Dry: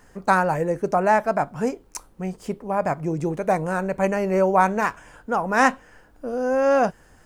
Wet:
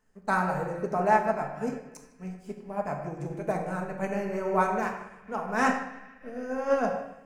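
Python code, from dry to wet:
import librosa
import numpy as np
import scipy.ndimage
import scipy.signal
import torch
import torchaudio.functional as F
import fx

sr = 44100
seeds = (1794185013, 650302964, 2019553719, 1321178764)

p1 = x + fx.echo_banded(x, sr, ms=154, feedback_pct=81, hz=2400.0, wet_db=-13.0, dry=0)
p2 = fx.room_shoebox(p1, sr, seeds[0], volume_m3=880.0, walls='mixed', distance_m=1.5)
p3 = fx.upward_expand(p2, sr, threshold_db=-38.0, expansion=1.5)
y = F.gain(torch.from_numpy(p3), -7.5).numpy()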